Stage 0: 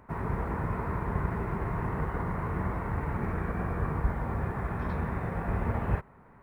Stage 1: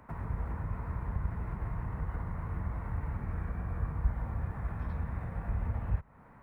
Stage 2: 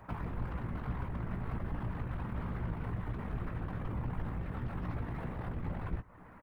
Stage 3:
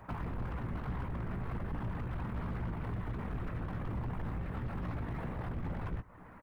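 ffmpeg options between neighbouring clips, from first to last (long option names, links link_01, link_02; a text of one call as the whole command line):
ffmpeg -i in.wav -filter_complex "[0:a]equalizer=frequency=390:width_type=o:width=0.26:gain=-8,acrossover=split=110[link_01][link_02];[link_02]acompressor=threshold=-43dB:ratio=6[link_03];[link_01][link_03]amix=inputs=2:normalize=0" out.wav
ffmpeg -i in.wav -filter_complex "[0:a]aeval=exprs='(tanh(126*val(0)+0.8)-tanh(0.8))/126':channel_layout=same,afftfilt=real='hypot(re,im)*cos(2*PI*random(0))':imag='hypot(re,im)*sin(2*PI*random(1))':win_size=512:overlap=0.75,asplit=2[link_01][link_02];[link_02]adelay=17,volume=-8.5dB[link_03];[link_01][link_03]amix=inputs=2:normalize=0,volume=12.5dB" out.wav
ffmpeg -i in.wav -af "volume=33dB,asoftclip=hard,volume=-33dB,volume=1dB" out.wav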